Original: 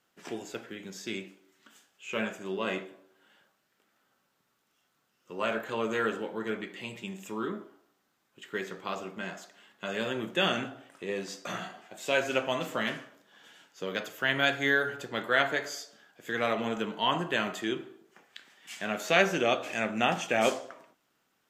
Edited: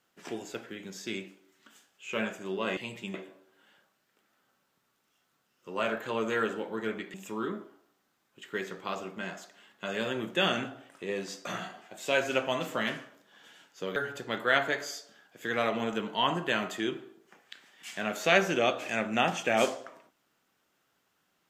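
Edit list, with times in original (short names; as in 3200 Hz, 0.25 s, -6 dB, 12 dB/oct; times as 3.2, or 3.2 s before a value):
6.77–7.14 move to 2.77
13.96–14.8 cut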